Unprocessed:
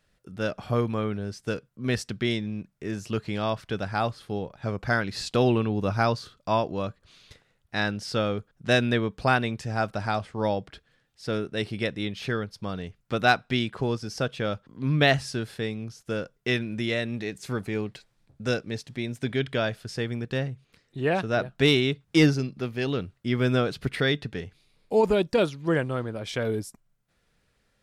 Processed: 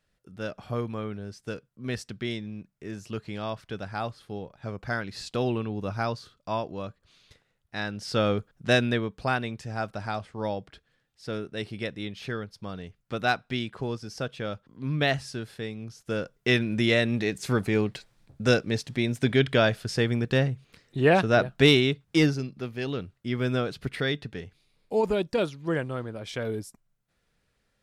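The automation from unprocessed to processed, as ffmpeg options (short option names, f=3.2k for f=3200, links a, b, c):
-af "volume=12.5dB,afade=t=in:st=7.9:d=0.41:silence=0.375837,afade=t=out:st=8.31:d=0.84:silence=0.421697,afade=t=in:st=15.74:d=1.13:silence=0.334965,afade=t=out:st=21.19:d=1.1:silence=0.375837"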